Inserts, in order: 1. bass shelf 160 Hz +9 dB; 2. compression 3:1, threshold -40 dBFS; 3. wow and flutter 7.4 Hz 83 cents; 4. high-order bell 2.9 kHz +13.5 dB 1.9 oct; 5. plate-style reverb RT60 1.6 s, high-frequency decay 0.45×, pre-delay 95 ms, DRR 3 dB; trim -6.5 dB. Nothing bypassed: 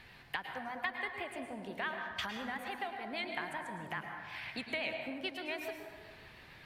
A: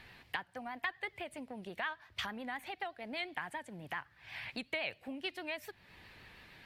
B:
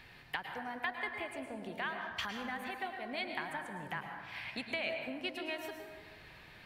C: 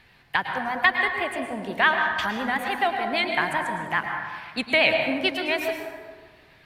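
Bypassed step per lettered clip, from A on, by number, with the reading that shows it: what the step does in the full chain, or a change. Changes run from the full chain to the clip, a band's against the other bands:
5, momentary loudness spread change +6 LU; 3, momentary loudness spread change +1 LU; 2, mean gain reduction 12.0 dB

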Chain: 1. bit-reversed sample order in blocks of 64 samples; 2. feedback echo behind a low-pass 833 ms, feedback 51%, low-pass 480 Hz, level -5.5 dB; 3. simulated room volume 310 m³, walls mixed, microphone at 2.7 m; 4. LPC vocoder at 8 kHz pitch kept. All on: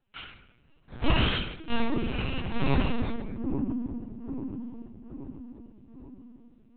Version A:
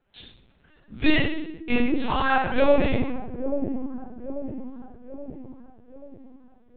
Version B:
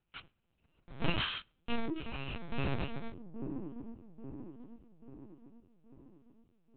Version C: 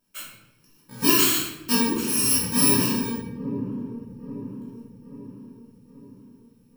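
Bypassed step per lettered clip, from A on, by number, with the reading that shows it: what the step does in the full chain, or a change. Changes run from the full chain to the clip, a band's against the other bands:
1, 125 Hz band -11.0 dB; 3, momentary loudness spread change -2 LU; 4, 125 Hz band -6.0 dB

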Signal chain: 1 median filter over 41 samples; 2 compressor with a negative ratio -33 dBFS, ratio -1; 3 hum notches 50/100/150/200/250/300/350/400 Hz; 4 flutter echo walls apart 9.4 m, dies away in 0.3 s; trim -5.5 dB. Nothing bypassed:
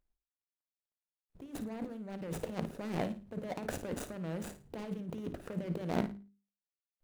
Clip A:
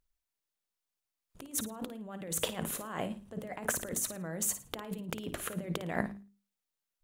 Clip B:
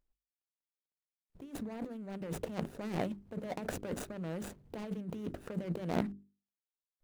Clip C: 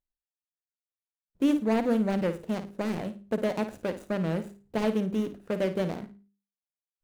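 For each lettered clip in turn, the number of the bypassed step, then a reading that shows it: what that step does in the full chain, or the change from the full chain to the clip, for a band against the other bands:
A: 1, 8 kHz band +16.0 dB; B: 4, echo-to-direct -10.5 dB to none; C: 2, crest factor change -8.0 dB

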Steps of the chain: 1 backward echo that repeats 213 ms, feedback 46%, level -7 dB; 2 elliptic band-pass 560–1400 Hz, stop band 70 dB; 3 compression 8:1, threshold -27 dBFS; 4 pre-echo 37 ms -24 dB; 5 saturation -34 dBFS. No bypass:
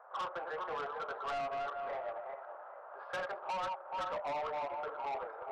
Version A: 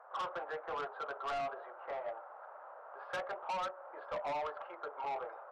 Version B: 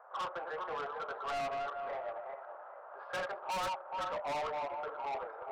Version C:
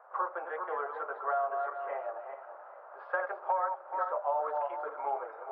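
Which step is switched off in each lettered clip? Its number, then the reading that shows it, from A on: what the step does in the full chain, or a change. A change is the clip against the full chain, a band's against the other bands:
1, crest factor change +1.5 dB; 3, momentary loudness spread change +1 LU; 5, distortion -8 dB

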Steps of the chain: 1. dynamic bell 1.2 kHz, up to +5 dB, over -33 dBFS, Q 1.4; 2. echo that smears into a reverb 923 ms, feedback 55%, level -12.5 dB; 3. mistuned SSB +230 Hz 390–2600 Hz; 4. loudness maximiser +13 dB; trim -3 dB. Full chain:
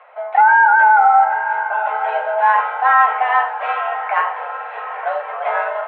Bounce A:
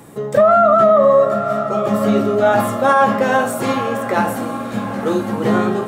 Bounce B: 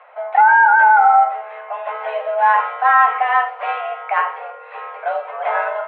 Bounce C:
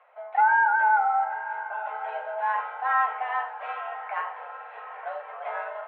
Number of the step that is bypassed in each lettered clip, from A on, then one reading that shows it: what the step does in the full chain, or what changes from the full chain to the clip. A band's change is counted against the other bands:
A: 3, momentary loudness spread change -3 LU; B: 2, momentary loudness spread change +5 LU; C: 4, crest factor change +3.5 dB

